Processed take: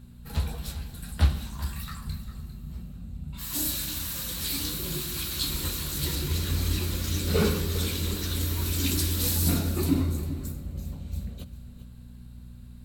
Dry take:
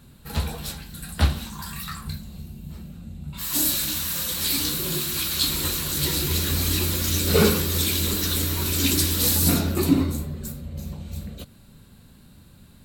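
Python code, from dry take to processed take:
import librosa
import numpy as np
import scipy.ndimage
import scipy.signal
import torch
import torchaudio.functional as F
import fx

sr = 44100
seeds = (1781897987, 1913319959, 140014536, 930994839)

y = fx.low_shelf(x, sr, hz=89.0, db=10.5)
y = fx.dmg_buzz(y, sr, base_hz=60.0, harmonics=4, level_db=-41.0, tilt_db=-4, odd_only=False)
y = fx.high_shelf(y, sr, hz=7700.0, db=-5.5, at=(6.15, 8.41))
y = y + 10.0 ** (-14.5 / 20.0) * np.pad(y, (int(400 * sr / 1000.0), 0))[:len(y)]
y = fx.rev_plate(y, sr, seeds[0], rt60_s=3.3, hf_ratio=0.75, predelay_ms=0, drr_db=15.0)
y = F.gain(torch.from_numpy(y), -7.0).numpy()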